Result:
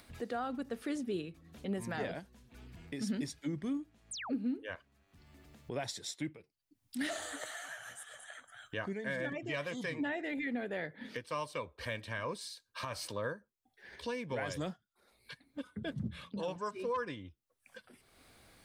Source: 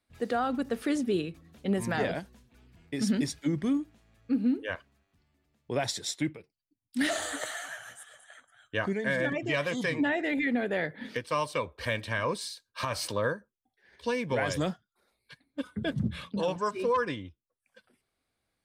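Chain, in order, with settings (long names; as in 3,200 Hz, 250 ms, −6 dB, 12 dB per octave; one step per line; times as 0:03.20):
sound drawn into the spectrogram fall, 0:04.11–0:04.36, 250–9,900 Hz −37 dBFS
upward compression, threshold −30 dBFS
level −8.5 dB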